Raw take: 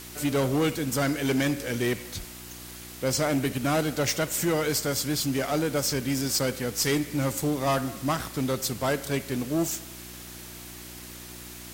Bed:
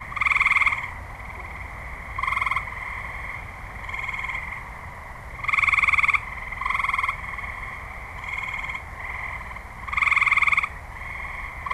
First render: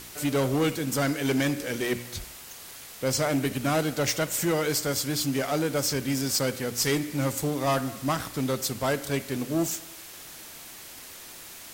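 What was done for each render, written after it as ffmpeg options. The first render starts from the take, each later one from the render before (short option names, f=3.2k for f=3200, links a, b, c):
-af "bandreject=f=60:t=h:w=4,bandreject=f=120:t=h:w=4,bandreject=f=180:t=h:w=4,bandreject=f=240:t=h:w=4,bandreject=f=300:t=h:w=4,bandreject=f=360:t=h:w=4"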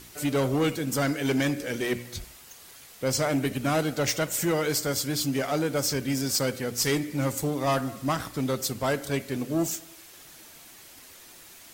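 -af "afftdn=nr=6:nf=-44"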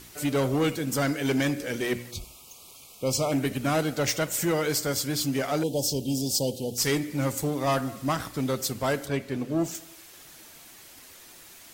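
-filter_complex "[0:a]asettb=1/sr,asplit=3[a][b][c];[a]atrim=end=2.114[d];[b]atrim=start=2.11:end=3.32,asetpts=PTS-STARTPTS,afade=t=in:d=0.004:c=qsin,afade=t=out:st=1.206:d=0.004:c=qsin,asuperstop=centerf=1700:order=12:qfactor=1.9[e];[c]atrim=start=3.316[f];[d][e]acrossfade=d=0.004:c1=hsin:c2=qsin[g];[g][f]acrossfade=d=0.004:c1=qsin:c2=hsin,asettb=1/sr,asplit=3[h][i][j];[h]atrim=end=5.634[k];[i]atrim=start=5.63:end=6.78,asetpts=PTS-STARTPTS,afade=t=in:d=0.004:c=qsin,afade=t=out:st=1.146:d=0.004:c=qsin,asuperstop=centerf=1600:order=12:qfactor=0.84[l];[j]atrim=start=6.776[m];[k][l]acrossfade=d=0.004:c1=hsin:c2=qsin[n];[n][m]acrossfade=d=0.004:c1=qsin:c2=hsin,asettb=1/sr,asplit=3[o][p][q];[o]atrim=end=9.064[r];[p]atrim=start=9.06:end=9.75,asetpts=PTS-STARTPTS,afade=t=in:d=0.004:c=qsin,afade=t=out:st=0.686:d=0.004:c=qsin,highshelf=f=5.2k:g=-10.5[s];[q]atrim=start=9.746[t];[r][s]acrossfade=d=0.004:c1=hsin:c2=qsin[u];[u][t]acrossfade=d=0.004:c1=qsin:c2=hsin"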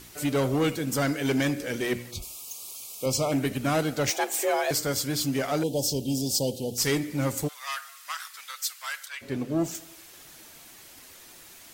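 -filter_complex "[0:a]asettb=1/sr,asplit=3[a][b][c];[a]atrim=end=2.224[d];[b]atrim=start=2.22:end=3.06,asetpts=PTS-STARTPTS,afade=t=in:d=0.004:c=qsin,afade=t=out:st=0.836:d=0.004:c=qsin,bass=f=250:g=-7,treble=f=4k:g=10[e];[c]atrim=start=3.056[f];[d][e]acrossfade=d=0.004:c1=hsin:c2=qsin[g];[g][f]acrossfade=d=0.004:c1=qsin:c2=hsin,asettb=1/sr,asplit=3[h][i][j];[h]atrim=end=4.104[k];[i]atrim=start=4.1:end=4.71,asetpts=PTS-STARTPTS,afade=t=in:d=0.004:c=qsin,afade=t=out:st=0.606:d=0.004:c=qsin,afreqshift=210[l];[j]atrim=start=4.706[m];[k][l]acrossfade=d=0.004:c1=hsin:c2=qsin[n];[n][m]acrossfade=d=0.004:c1=qsin:c2=hsin,asplit=3[o][p][q];[o]afade=t=out:st=7.47:d=0.02[r];[p]highpass=f=1.3k:w=0.5412,highpass=f=1.3k:w=1.3066,afade=t=in:st=7.47:d=0.02,afade=t=out:st=9.21:d=0.02[s];[q]afade=t=in:st=9.21:d=0.02[t];[r][s][t]amix=inputs=3:normalize=0"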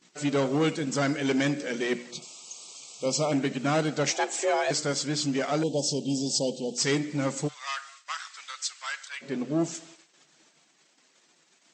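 -af "afftfilt=real='re*between(b*sr/4096,130,8200)':imag='im*between(b*sr/4096,130,8200)':win_size=4096:overlap=0.75,agate=range=-20dB:threshold=-49dB:ratio=16:detection=peak"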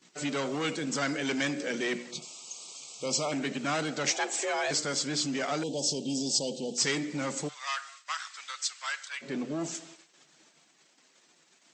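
-filter_complex "[0:a]acrossover=split=170|1000[a][b][c];[a]acompressor=threshold=-48dB:ratio=6[d];[b]alimiter=level_in=4dB:limit=-24dB:level=0:latency=1:release=11,volume=-4dB[e];[d][e][c]amix=inputs=3:normalize=0"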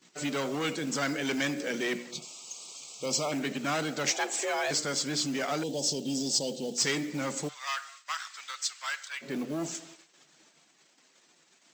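-af "acrusher=bits=6:mode=log:mix=0:aa=0.000001"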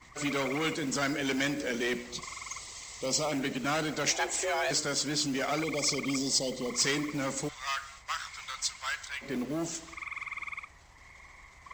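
-filter_complex "[1:a]volume=-20dB[a];[0:a][a]amix=inputs=2:normalize=0"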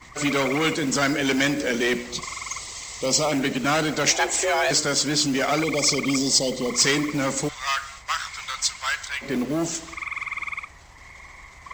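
-af "volume=8.5dB"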